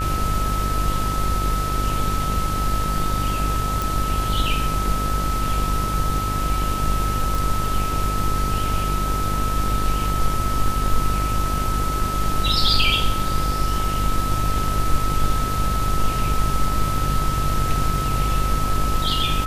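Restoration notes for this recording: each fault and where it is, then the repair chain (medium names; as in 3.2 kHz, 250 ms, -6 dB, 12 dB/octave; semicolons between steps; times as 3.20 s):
buzz 50 Hz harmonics 37 -25 dBFS
whine 1.3 kHz -25 dBFS
3.82 s: pop
7.35 s: pop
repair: de-click; band-stop 1.3 kHz, Q 30; de-hum 50 Hz, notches 37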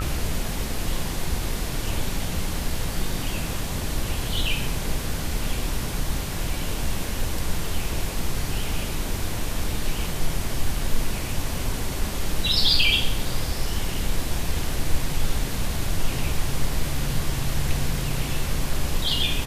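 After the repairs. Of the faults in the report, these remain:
nothing left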